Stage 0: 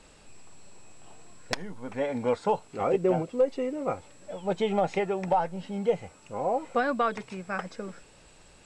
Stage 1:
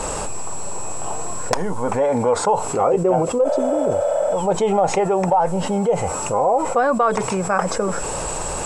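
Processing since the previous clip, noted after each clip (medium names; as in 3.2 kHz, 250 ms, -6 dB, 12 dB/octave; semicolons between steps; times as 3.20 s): spectral replace 3.47–4.28 s, 480–3500 Hz after; graphic EQ 250/500/1000/2000/4000/8000 Hz -4/+4/+8/-6/-8/+7 dB; level flattener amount 70%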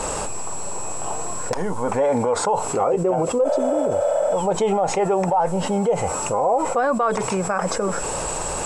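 peak limiter -11 dBFS, peak gain reduction 8.5 dB; bass shelf 160 Hz -3 dB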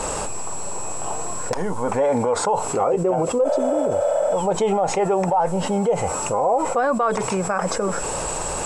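no audible change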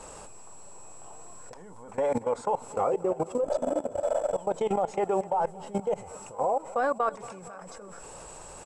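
level held to a coarse grid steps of 20 dB; feedback delay 232 ms, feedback 59%, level -19.5 dB; trim -5 dB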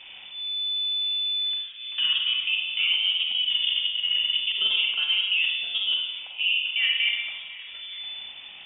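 Schroeder reverb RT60 1.1 s, combs from 32 ms, DRR 0 dB; frequency inversion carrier 3.5 kHz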